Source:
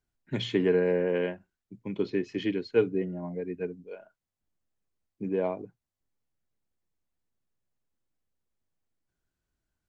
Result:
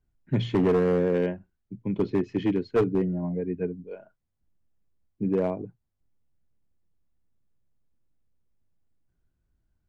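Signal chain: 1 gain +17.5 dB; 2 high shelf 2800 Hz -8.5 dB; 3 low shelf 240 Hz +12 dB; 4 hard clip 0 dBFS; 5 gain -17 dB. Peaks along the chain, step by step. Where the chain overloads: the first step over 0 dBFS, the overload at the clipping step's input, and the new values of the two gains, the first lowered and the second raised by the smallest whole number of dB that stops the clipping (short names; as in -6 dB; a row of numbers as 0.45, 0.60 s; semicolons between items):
+6.5, +6.0, +9.5, 0.0, -17.0 dBFS; step 1, 9.5 dB; step 1 +7.5 dB, step 5 -7 dB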